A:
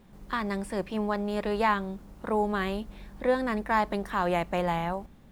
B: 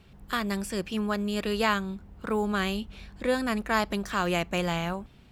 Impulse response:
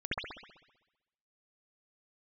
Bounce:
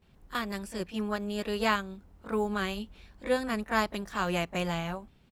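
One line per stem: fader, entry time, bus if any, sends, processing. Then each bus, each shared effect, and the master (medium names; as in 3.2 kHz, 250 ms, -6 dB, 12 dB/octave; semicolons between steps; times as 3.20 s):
-14.5 dB, 0.00 s, no send, none
-1.0 dB, 20 ms, polarity flipped, no send, upward expansion 1.5:1, over -36 dBFS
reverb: none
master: none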